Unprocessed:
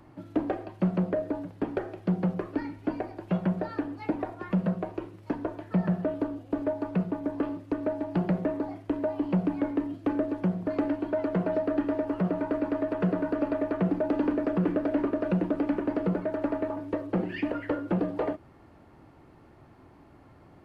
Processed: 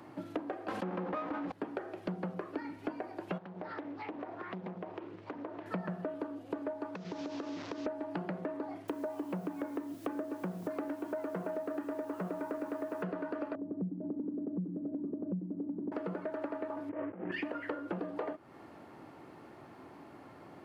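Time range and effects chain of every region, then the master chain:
0.68–1.52 s: comb filter that takes the minimum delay 3.8 ms + low-pass that closes with the level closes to 3 kHz, closed at -28.5 dBFS + level flattener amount 70%
3.38–5.66 s: low-pass 3.8 kHz + compression 3:1, threshold -44 dBFS + loudspeaker Doppler distortion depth 0.62 ms
6.95–7.86 s: one-bit delta coder 32 kbps, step -39.5 dBFS + compression 8:1, threshold -37 dBFS
8.88–13.03 s: low-pass 2.6 kHz 6 dB/octave + word length cut 10-bit, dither triangular
13.55–15.92 s: ladder band-pass 170 Hz, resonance 30% + peaking EQ 190 Hz +15 dB 1.9 oct + upward compressor, threshold -24 dBFS
16.89–17.32 s: CVSD coder 16 kbps + low-pass 1.9 kHz 24 dB/octave + compressor with a negative ratio -38 dBFS
whole clip: Bessel high-pass 230 Hz, order 2; dynamic bell 1.3 kHz, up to +4 dB, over -45 dBFS, Q 1.2; compression, threshold -40 dBFS; trim +4.5 dB

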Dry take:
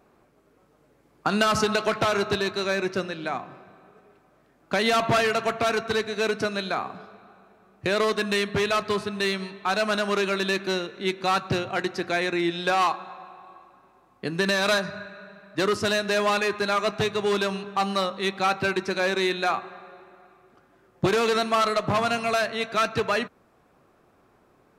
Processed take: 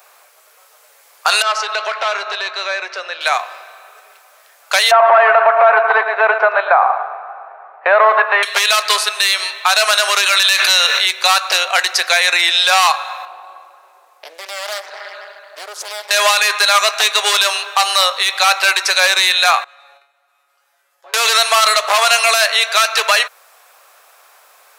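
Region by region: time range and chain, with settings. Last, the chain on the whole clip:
1.42–3.21 s: tape spacing loss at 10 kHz 28 dB + compression 2:1, threshold -31 dBFS
4.91–8.43 s: low-pass 1.8 kHz 24 dB/octave + peaking EQ 800 Hz +12 dB 1.1 oct + feedback delay 112 ms, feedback 35%, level -12 dB
10.26–11.06 s: peaking EQ 120 Hz -14.5 dB 2.9 oct + level flattener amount 70%
13.25–16.11 s: tilt shelf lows +9 dB, about 640 Hz + compression, threshold -35 dBFS + loudspeaker Doppler distortion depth 0.7 ms
19.64–21.14 s: low-pass that closes with the level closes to 950 Hz, closed at -20.5 dBFS + level held to a coarse grid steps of 16 dB + feedback comb 140 Hz, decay 0.35 s, mix 90%
whole clip: steep high-pass 520 Hz 36 dB/octave; tilt EQ +4.5 dB/octave; loudness maximiser +15 dB; trim -1 dB

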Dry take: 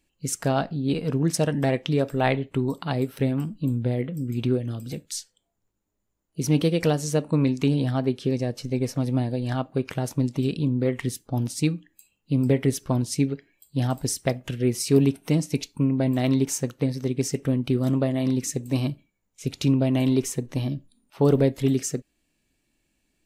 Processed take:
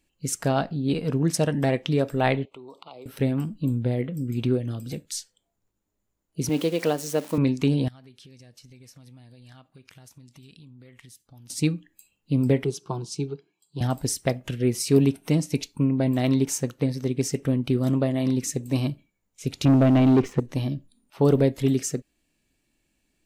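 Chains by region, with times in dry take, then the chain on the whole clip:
2.45–3.06 s: three-band isolator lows -22 dB, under 410 Hz, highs -16 dB, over 5.6 kHz + compression 3:1, threshold -42 dBFS + Butterworth band-stop 1.7 kHz, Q 1.5
6.49–7.38 s: zero-crossing glitches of -25 dBFS + high-pass 260 Hz + treble shelf 5 kHz -8.5 dB
7.88–11.50 s: amplifier tone stack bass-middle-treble 5-5-5 + compression, threshold -45 dBFS
12.64–13.81 s: band-pass 160–6100 Hz + static phaser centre 380 Hz, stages 8
19.65–20.40 s: low-pass 2.2 kHz + waveshaping leveller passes 2
whole clip: none

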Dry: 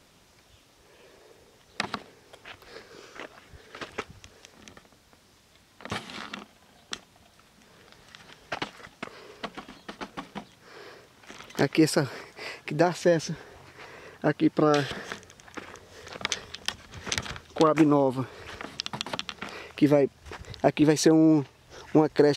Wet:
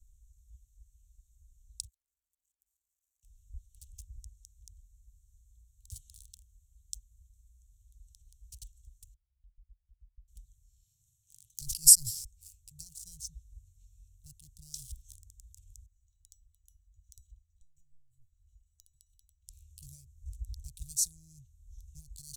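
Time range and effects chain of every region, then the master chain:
1.87–3.23 s: compression 4:1, threshold -49 dBFS + hysteresis with a dead band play -44.5 dBFS + differentiator
9.14–10.28 s: low-pass 1.2 kHz + gate -45 dBFS, range -19 dB + compression 2:1, threshold -49 dBFS
10.82–12.25 s: high-pass 130 Hz 24 dB/octave + bass shelf 270 Hz +5 dB + decay stretcher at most 35 dB/s
15.86–19.48 s: median filter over 3 samples + compression 3:1, threshold -25 dBFS + feedback comb 990 Hz, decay 0.25 s, mix 90%
whole clip: local Wiener filter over 9 samples; inverse Chebyshev band-stop 240–2000 Hz, stop band 70 dB; bass shelf 79 Hz +6.5 dB; trim +8.5 dB

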